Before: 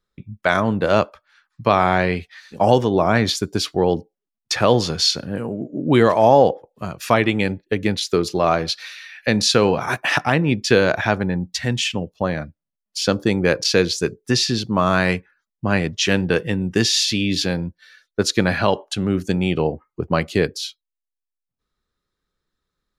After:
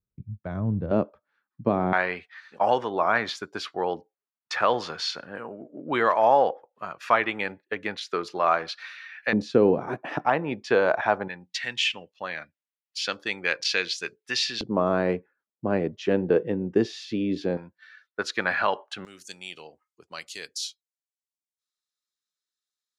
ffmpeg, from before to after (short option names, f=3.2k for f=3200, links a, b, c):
-af "asetnsamples=n=441:p=0,asendcmd='0.91 bandpass f 260;1.93 bandpass f 1300;9.33 bandpass f 330;10.26 bandpass f 850;11.28 bandpass f 2400;14.61 bandpass f 430;17.57 bandpass f 1400;19.05 bandpass f 7000',bandpass=f=100:t=q:w=1.2:csg=0"